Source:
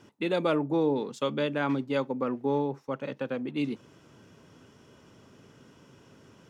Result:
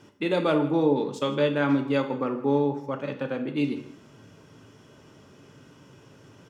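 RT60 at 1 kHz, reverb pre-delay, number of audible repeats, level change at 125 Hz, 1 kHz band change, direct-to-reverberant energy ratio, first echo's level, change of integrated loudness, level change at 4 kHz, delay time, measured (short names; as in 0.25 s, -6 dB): 0.65 s, 3 ms, 1, +5.0 dB, +3.0 dB, 5.0 dB, -19.5 dB, +4.0 dB, +3.0 dB, 0.16 s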